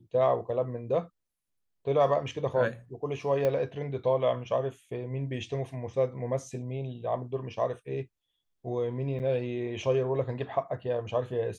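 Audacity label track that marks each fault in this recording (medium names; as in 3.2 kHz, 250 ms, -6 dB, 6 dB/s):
3.450000	3.450000	pop -17 dBFS
9.190000	9.200000	dropout 8.5 ms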